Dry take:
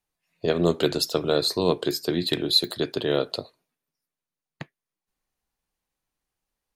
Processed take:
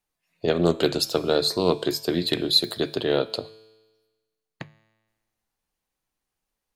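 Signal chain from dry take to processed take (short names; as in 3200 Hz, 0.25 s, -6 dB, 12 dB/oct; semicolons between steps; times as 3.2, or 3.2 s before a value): notches 50/100/150 Hz; resonator 110 Hz, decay 1.3 s, harmonics all, mix 50%; Doppler distortion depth 0.1 ms; gain +6.5 dB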